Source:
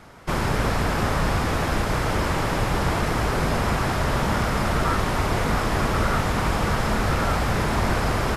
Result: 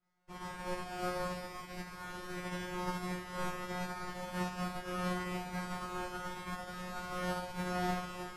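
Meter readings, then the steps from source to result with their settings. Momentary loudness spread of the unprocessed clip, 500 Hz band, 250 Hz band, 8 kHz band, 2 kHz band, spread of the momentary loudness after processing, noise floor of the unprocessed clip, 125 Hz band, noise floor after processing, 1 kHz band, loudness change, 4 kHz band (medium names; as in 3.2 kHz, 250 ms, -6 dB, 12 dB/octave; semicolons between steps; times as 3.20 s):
1 LU, -15.5 dB, -14.5 dB, -16.0 dB, -16.0 dB, 8 LU, -25 dBFS, -20.0 dB, -49 dBFS, -15.0 dB, -16.5 dB, -16.0 dB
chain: feedback comb 180 Hz, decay 1.2 s, mix 100%; upward expansion 2.5:1, over -53 dBFS; trim +7 dB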